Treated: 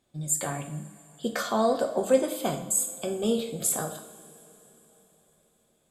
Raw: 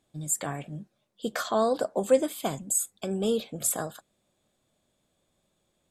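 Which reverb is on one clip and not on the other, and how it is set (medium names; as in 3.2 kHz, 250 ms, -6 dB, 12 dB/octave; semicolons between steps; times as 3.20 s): two-slope reverb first 0.56 s, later 4.1 s, from -19 dB, DRR 4 dB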